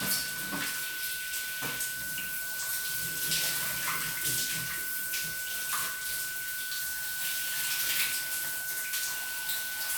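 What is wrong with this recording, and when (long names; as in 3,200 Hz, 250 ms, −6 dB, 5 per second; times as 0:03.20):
whistle 1,500 Hz −37 dBFS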